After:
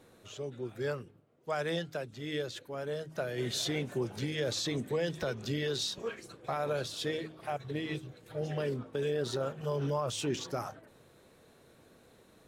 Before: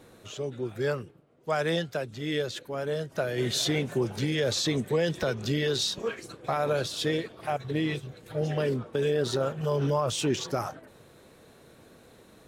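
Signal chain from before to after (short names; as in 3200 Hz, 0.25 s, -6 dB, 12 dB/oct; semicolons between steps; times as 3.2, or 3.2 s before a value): de-hum 52.4 Hz, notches 6; gain -6 dB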